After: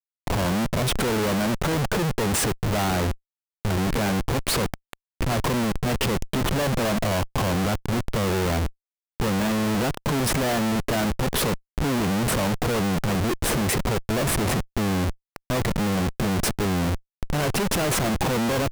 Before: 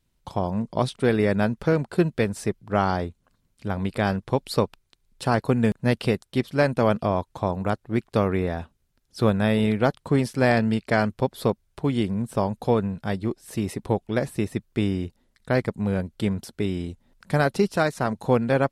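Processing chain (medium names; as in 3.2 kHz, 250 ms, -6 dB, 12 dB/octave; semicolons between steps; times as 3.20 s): peaking EQ 4.2 kHz -9.5 dB 0.94 oct; transient shaper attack -5 dB, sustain +11 dB; Schmitt trigger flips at -35.5 dBFS; trim +1.5 dB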